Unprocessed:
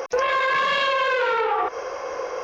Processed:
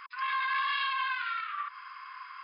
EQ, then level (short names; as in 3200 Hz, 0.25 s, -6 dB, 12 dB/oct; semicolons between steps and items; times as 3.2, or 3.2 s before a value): brick-wall FIR band-pass 990–5100 Hz; -8.5 dB